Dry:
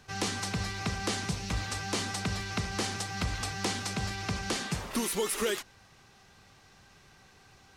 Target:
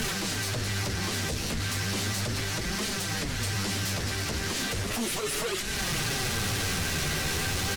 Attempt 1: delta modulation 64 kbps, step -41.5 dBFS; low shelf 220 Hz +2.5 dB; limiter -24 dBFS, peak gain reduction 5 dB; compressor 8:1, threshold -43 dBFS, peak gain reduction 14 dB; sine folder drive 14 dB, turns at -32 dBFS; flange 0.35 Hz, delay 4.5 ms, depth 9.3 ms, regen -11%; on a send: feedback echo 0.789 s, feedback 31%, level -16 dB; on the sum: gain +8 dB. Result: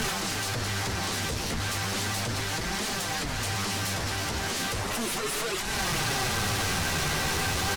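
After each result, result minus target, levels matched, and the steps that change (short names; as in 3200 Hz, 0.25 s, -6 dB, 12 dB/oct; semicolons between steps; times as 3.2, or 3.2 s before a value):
echo 0.545 s early; 1000 Hz band +4.5 dB
change: feedback echo 1.334 s, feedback 31%, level -16 dB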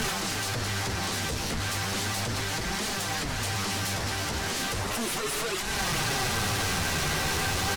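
1000 Hz band +4.5 dB
add after compressor: bell 900 Hz -13.5 dB 0.75 oct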